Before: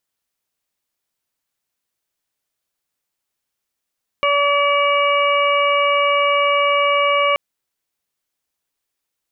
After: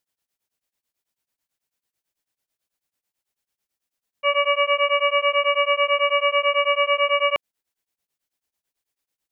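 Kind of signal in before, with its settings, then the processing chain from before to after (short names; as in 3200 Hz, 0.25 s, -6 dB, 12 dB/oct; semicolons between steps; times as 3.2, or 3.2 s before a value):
steady additive tone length 3.13 s, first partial 572 Hz, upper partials 1/-18/-2/-6 dB, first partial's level -18 dB
bell 1200 Hz -3 dB 0.43 oct; beating tremolo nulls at 9.1 Hz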